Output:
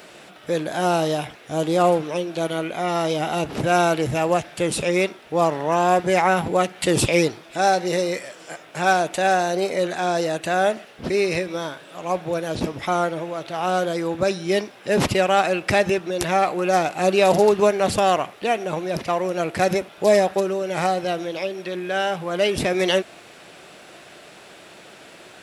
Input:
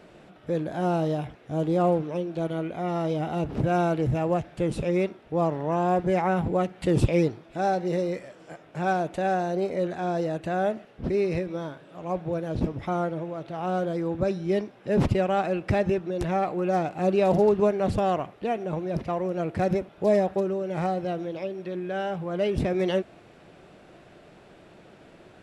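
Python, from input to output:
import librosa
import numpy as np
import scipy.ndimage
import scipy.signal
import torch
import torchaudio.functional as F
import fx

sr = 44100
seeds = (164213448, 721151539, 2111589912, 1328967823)

y = fx.tilt_eq(x, sr, slope=3.5)
y = y * 10.0 ** (8.5 / 20.0)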